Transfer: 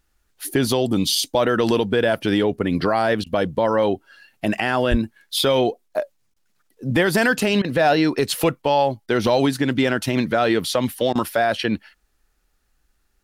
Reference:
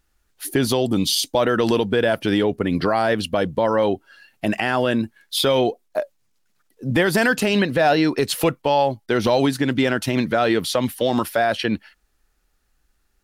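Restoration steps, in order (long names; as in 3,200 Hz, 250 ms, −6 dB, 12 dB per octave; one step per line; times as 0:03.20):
high-pass at the plosives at 0:04.90
repair the gap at 0:03.24/0:06.34/0:07.62/0:11.13, 22 ms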